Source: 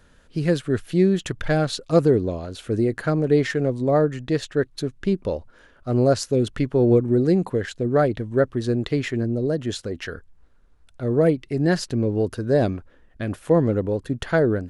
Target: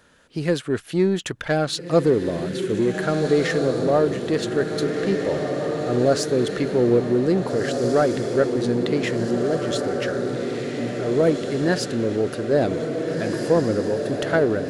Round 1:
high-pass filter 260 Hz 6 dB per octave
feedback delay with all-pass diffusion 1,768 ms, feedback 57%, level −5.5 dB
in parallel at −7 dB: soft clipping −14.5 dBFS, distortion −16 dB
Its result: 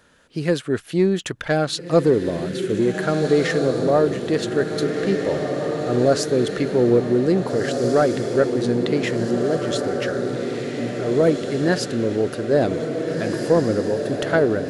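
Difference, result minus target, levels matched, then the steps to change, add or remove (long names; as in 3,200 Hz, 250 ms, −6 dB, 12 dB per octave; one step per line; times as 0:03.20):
soft clipping: distortion −10 dB
change: soft clipping −26 dBFS, distortion −6 dB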